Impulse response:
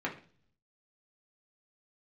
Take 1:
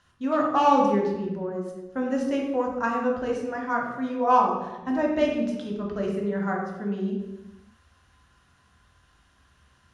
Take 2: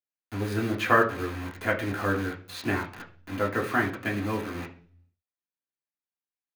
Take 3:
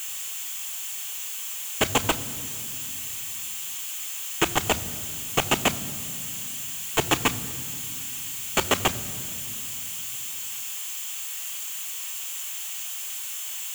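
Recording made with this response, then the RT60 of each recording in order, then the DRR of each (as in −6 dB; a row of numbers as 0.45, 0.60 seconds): 2; 1.0, 0.45, 2.6 seconds; −2.0, −3.5, 11.0 decibels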